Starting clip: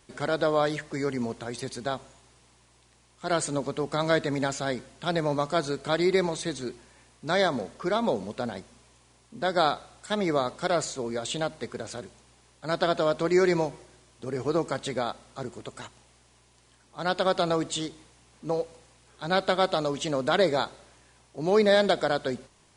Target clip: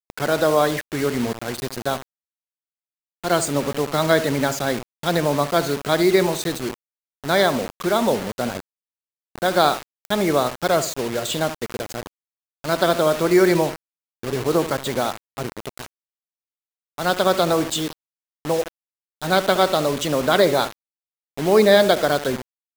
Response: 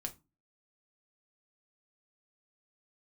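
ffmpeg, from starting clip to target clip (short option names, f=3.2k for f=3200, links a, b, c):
-filter_complex "[0:a]afftfilt=real='re*gte(hypot(re,im),0.0141)':imag='im*gte(hypot(re,im),0.0141)':win_size=1024:overlap=0.75,asplit=2[a][b];[b]adelay=70,lowpass=f=1.9k:p=1,volume=-13dB,asplit=2[c][d];[d]adelay=70,lowpass=f=1.9k:p=1,volume=0.33,asplit=2[e][f];[f]adelay=70,lowpass=f=1.9k:p=1,volume=0.33[g];[a][c][e][g]amix=inputs=4:normalize=0,acrusher=bits=5:mix=0:aa=0.000001,volume=6.5dB"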